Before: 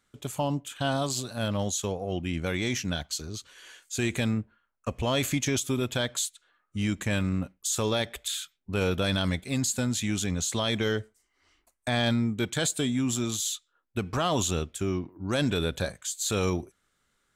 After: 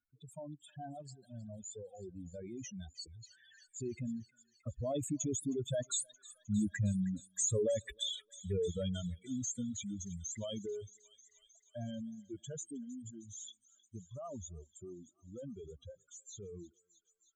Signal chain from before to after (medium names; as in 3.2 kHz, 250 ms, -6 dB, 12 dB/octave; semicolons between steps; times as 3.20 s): spectral contrast enhancement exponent 3.8; Doppler pass-by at 7.00 s, 15 m/s, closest 20 m; on a send: thinning echo 312 ms, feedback 74%, high-pass 980 Hz, level -14.5 dB; on the sum: reverb removal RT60 1.5 s; trim -2.5 dB